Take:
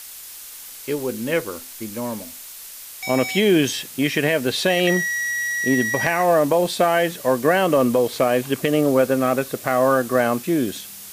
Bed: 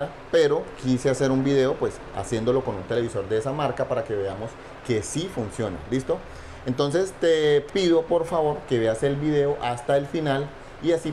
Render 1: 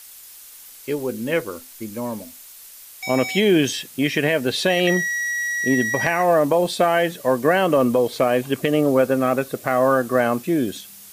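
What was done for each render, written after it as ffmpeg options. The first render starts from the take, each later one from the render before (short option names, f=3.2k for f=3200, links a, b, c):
-af "afftdn=nr=6:nf=-38"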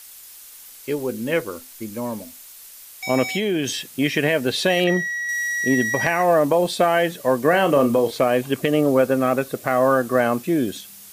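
-filter_complex "[0:a]asettb=1/sr,asplit=3[a][b][c];[a]atrim=end=3.324[d];[b]atrim=start=3.32:end=3.86,asetpts=PTS-STARTPTS,afade=t=in:d=0.004:c=qsin,afade=t=out:st=0.536:d=0.004:c=qsin,acompressor=threshold=-19dB:ratio=4:attack=3.2:release=140:knee=1:detection=peak[e];[c]atrim=start=3.856[f];[d][e]acrossfade=d=0.004:c1=hsin:c2=qsin[g];[g][f]acrossfade=d=0.004:c1=qsin:c2=hsin,asettb=1/sr,asplit=3[h][i][j];[h]atrim=end=4.844[k];[i]atrim=start=4.84:end=5.29,asetpts=PTS-STARTPTS,afade=t=in:d=0.004:c=qsin,afade=t=out:st=0.446:d=0.004:c=qsin,highshelf=f=3.8k:g=-10.5[l];[j]atrim=start=5.286[m];[k][l]acrossfade=d=0.004:c1=hsin:c2=qsin[n];[n][m]acrossfade=d=0.004:c1=qsin:c2=hsin,asettb=1/sr,asplit=3[o][p][q];[o]atrim=end=7.494[r];[p]atrim=start=7.49:end=8.11,asetpts=PTS-STARTPTS,afade=t=in:d=0.004:c=qsin,afade=t=out:st=0.616:d=0.004:c=qsin,asplit=2[s][t];[t]adelay=35,volume=-9dB[u];[s][u]amix=inputs=2:normalize=0,atrim=end_sample=27342[v];[q]atrim=start=8.106[w];[r][v]acrossfade=d=0.004:c1=hsin:c2=qsin[x];[x][w]acrossfade=d=0.004:c1=qsin:c2=hsin"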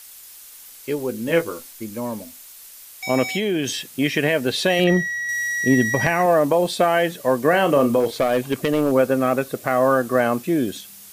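-filter_complex "[0:a]asettb=1/sr,asplit=3[a][b][c];[a]atrim=end=1.264[d];[b]atrim=start=1.26:end=1.71,asetpts=PTS-STARTPTS,afade=t=in:d=0.004:c=qsin,afade=t=out:st=0.446:d=0.004:c=qsin,asplit=2[e][f];[f]adelay=18,volume=-4dB[g];[e][g]amix=inputs=2:normalize=0,atrim=end_sample=19845[h];[c]atrim=start=1.706[i];[d][h]acrossfade=d=0.004:c1=hsin:c2=qsin[j];[j][i]acrossfade=d=0.004:c1=qsin:c2=hsin,asettb=1/sr,asplit=3[k][l][m];[k]atrim=end=4.794[n];[l]atrim=start=4.79:end=6.26,asetpts=PTS-STARTPTS,afade=t=in:d=0.004:c=qsin,afade=t=out:st=1.466:d=0.004:c=qsin,lowshelf=f=180:g=9[o];[m]atrim=start=6.256[p];[n][o]acrossfade=d=0.004:c1=hsin:c2=qsin[q];[q][p]acrossfade=d=0.004:c1=qsin:c2=hsin,asettb=1/sr,asplit=3[r][s][t];[r]atrim=end=8.004[u];[s]atrim=start=8:end=8.92,asetpts=PTS-STARTPTS,afade=t=in:d=0.004:c=qsin,afade=t=out:st=0.916:d=0.004:c=qsin,asoftclip=type=hard:threshold=-13dB[v];[t]atrim=start=8.916[w];[u][v]acrossfade=d=0.004:c1=hsin:c2=qsin[x];[x][w]acrossfade=d=0.004:c1=qsin:c2=hsin"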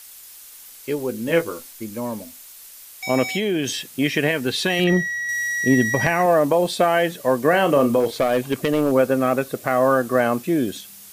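-filter_complex "[0:a]asettb=1/sr,asplit=3[a][b][c];[a]atrim=end=4.314[d];[b]atrim=start=4.31:end=4.93,asetpts=PTS-STARTPTS,afade=t=in:d=0.004:c=qsin,afade=t=out:st=0.616:d=0.004:c=qsin,equalizer=f=590:t=o:w=0.36:g=-12[e];[c]atrim=start=4.926[f];[d][e]acrossfade=d=0.004:c1=hsin:c2=qsin[g];[g][f]acrossfade=d=0.004:c1=qsin:c2=hsin"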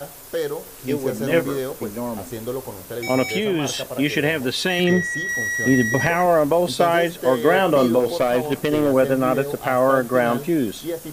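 -filter_complex "[1:a]volume=-6dB[a];[0:a][a]amix=inputs=2:normalize=0"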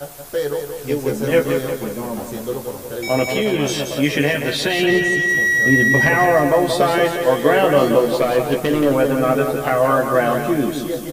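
-filter_complex "[0:a]asplit=2[a][b];[b]adelay=14,volume=-4dB[c];[a][c]amix=inputs=2:normalize=0,aecho=1:1:177|354|531|708|885|1062:0.447|0.219|0.107|0.0526|0.0258|0.0126"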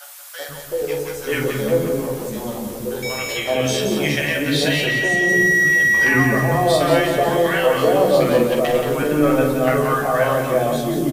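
-filter_complex "[0:a]asplit=2[a][b];[b]adelay=47,volume=-7dB[c];[a][c]amix=inputs=2:normalize=0,acrossover=split=320|980[d][e][f];[e]adelay=380[g];[d]adelay=480[h];[h][g][f]amix=inputs=3:normalize=0"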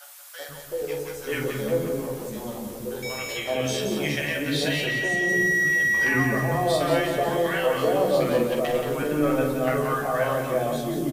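-af "volume=-6.5dB"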